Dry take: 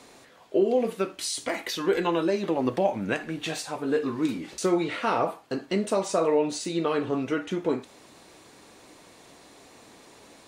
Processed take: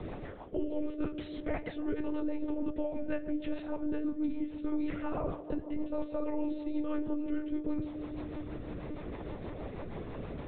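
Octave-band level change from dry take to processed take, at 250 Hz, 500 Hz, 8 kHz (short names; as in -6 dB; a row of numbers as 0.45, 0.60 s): -4.0 dB, -12.5 dB, under -40 dB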